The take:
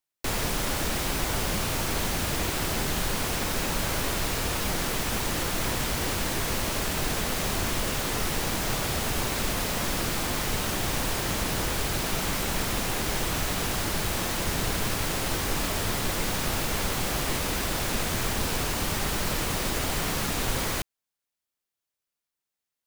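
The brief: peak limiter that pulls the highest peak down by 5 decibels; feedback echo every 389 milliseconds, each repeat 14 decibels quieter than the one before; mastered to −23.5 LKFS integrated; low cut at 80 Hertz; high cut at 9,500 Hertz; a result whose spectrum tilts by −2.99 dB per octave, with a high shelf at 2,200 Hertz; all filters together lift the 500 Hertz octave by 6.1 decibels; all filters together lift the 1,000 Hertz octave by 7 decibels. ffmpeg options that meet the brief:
ffmpeg -i in.wav -af "highpass=80,lowpass=9500,equalizer=frequency=500:width_type=o:gain=5.5,equalizer=frequency=1000:width_type=o:gain=5.5,highshelf=frequency=2200:gain=8,alimiter=limit=-15.5dB:level=0:latency=1,aecho=1:1:389|778:0.2|0.0399,volume=0.5dB" out.wav

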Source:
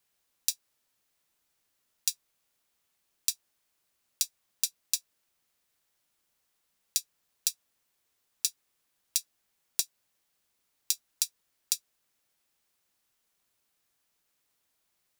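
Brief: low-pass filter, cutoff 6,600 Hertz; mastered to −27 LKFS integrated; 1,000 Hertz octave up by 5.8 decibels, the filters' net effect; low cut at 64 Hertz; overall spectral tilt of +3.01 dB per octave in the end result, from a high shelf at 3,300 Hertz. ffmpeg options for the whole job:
ffmpeg -i in.wav -af "highpass=64,lowpass=6600,equalizer=frequency=1000:width_type=o:gain=7,highshelf=frequency=3300:gain=3.5,volume=7dB" out.wav

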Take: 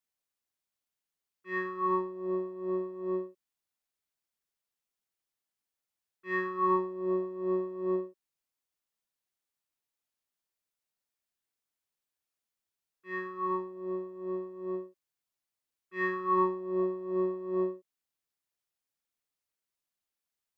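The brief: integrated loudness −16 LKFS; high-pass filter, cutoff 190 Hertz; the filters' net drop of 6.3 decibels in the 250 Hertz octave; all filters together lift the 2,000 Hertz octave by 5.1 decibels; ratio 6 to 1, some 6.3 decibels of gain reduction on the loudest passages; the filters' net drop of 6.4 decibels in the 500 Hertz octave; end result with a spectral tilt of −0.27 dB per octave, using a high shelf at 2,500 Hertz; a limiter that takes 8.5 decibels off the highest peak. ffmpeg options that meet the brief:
ffmpeg -i in.wav -af "highpass=190,equalizer=frequency=250:width_type=o:gain=-3,equalizer=frequency=500:width_type=o:gain=-8.5,equalizer=frequency=2000:width_type=o:gain=8,highshelf=frequency=2500:gain=-5.5,acompressor=threshold=-31dB:ratio=6,volume=26dB,alimiter=limit=-6.5dB:level=0:latency=1" out.wav

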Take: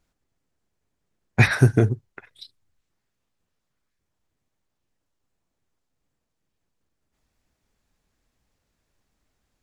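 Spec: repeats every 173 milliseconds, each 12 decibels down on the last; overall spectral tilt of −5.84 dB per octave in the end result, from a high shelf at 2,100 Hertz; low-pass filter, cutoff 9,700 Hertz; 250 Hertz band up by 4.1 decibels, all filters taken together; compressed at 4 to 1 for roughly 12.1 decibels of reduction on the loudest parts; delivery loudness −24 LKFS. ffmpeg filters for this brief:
ffmpeg -i in.wav -af "lowpass=9700,equalizer=frequency=250:width_type=o:gain=5.5,highshelf=frequency=2100:gain=-4,acompressor=threshold=-23dB:ratio=4,aecho=1:1:173|346|519:0.251|0.0628|0.0157,volume=5.5dB" out.wav

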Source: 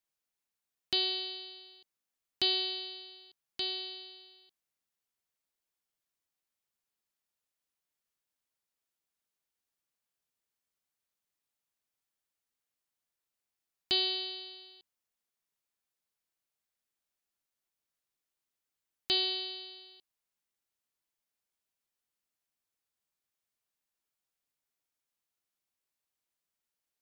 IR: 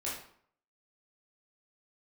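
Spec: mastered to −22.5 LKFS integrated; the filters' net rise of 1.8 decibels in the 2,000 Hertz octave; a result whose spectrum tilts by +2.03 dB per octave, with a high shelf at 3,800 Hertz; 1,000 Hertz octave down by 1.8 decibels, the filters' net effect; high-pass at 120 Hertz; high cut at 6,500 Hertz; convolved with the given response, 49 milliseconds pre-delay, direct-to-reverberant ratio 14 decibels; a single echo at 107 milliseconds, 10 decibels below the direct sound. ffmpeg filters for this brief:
-filter_complex "[0:a]highpass=120,lowpass=6500,equalizer=frequency=1000:width_type=o:gain=-3.5,equalizer=frequency=2000:width_type=o:gain=5,highshelf=frequency=3800:gain=-5,aecho=1:1:107:0.316,asplit=2[link_01][link_02];[1:a]atrim=start_sample=2205,adelay=49[link_03];[link_02][link_03]afir=irnorm=-1:irlink=0,volume=-17dB[link_04];[link_01][link_04]amix=inputs=2:normalize=0,volume=10.5dB"

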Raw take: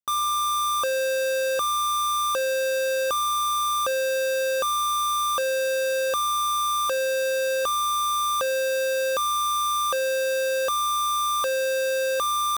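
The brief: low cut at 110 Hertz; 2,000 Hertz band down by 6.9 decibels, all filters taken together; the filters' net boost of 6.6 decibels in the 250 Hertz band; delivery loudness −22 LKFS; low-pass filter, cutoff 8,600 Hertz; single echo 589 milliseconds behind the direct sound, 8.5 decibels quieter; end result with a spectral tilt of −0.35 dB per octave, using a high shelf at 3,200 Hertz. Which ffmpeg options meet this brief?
ffmpeg -i in.wav -af "highpass=110,lowpass=8600,equalizer=frequency=250:width_type=o:gain=8.5,equalizer=frequency=2000:width_type=o:gain=-7.5,highshelf=frequency=3200:gain=-8.5,aecho=1:1:589:0.376,volume=2.5dB" out.wav

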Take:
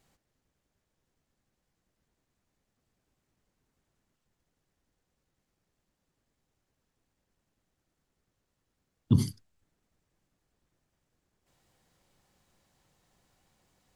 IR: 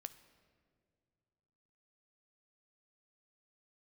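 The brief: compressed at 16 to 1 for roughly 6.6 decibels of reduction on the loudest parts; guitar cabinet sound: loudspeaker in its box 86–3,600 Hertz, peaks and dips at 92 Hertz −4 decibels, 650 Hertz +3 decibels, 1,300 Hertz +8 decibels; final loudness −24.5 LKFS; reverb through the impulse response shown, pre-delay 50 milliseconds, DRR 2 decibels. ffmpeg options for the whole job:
-filter_complex "[0:a]acompressor=threshold=-22dB:ratio=16,asplit=2[link_01][link_02];[1:a]atrim=start_sample=2205,adelay=50[link_03];[link_02][link_03]afir=irnorm=-1:irlink=0,volume=3dB[link_04];[link_01][link_04]amix=inputs=2:normalize=0,highpass=86,equalizer=frequency=92:width_type=q:width=4:gain=-4,equalizer=frequency=650:width_type=q:width=4:gain=3,equalizer=frequency=1300:width_type=q:width=4:gain=8,lowpass=frequency=3600:width=0.5412,lowpass=frequency=3600:width=1.3066,volume=9.5dB"

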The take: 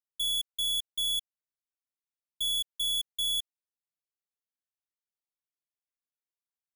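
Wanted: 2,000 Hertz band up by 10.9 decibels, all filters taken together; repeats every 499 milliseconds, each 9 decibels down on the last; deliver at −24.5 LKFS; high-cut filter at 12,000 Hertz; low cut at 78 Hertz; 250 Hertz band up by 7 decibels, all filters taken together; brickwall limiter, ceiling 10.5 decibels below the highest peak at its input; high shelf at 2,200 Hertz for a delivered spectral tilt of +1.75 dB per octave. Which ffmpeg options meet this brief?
ffmpeg -i in.wav -af "highpass=78,lowpass=12000,equalizer=frequency=250:width_type=o:gain=9,equalizer=frequency=2000:width_type=o:gain=9,highshelf=frequency=2200:gain=8,alimiter=level_in=5dB:limit=-24dB:level=0:latency=1,volume=-5dB,aecho=1:1:499|998|1497|1996:0.355|0.124|0.0435|0.0152,volume=9dB" out.wav

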